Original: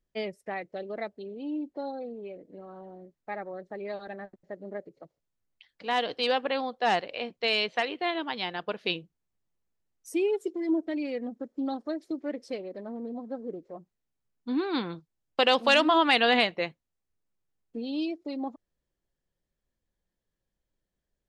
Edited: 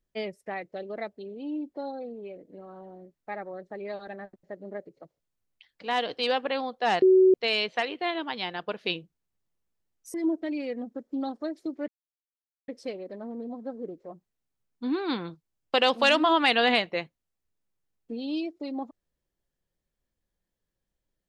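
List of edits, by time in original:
7.02–7.34 bleep 375 Hz -14 dBFS
10.14–10.59 cut
12.33 insert silence 0.80 s

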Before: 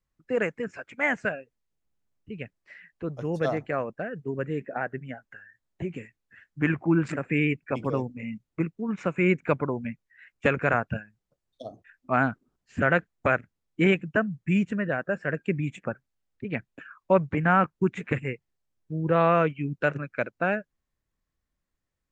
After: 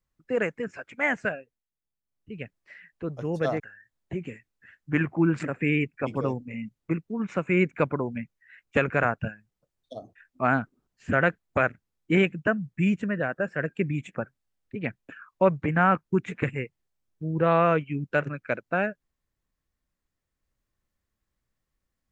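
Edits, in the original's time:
1.32–2.38 dip -12 dB, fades 0.32 s
3.6–5.29 cut

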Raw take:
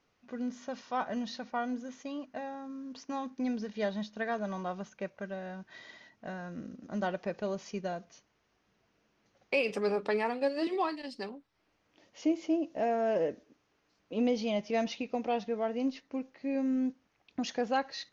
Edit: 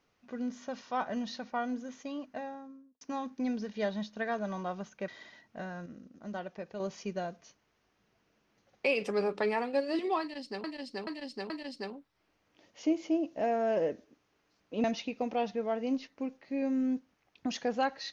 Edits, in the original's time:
2.36–3.01 studio fade out
5.08–5.76 cut
6.54–7.48 gain -6.5 dB
10.89–11.32 loop, 4 plays
14.23–14.77 cut

